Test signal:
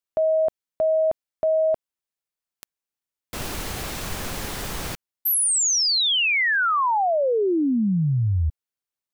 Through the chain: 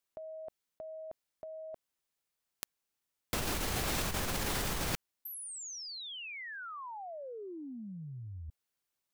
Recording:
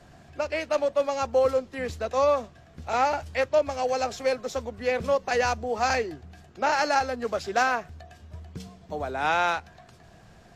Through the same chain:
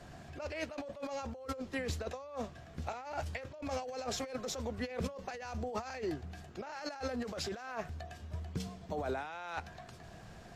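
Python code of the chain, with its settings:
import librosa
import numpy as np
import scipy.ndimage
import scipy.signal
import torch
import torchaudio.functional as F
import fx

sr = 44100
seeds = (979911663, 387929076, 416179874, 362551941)

y = fx.over_compress(x, sr, threshold_db=-34.0, ratio=-1.0)
y = y * librosa.db_to_amplitude(-6.5)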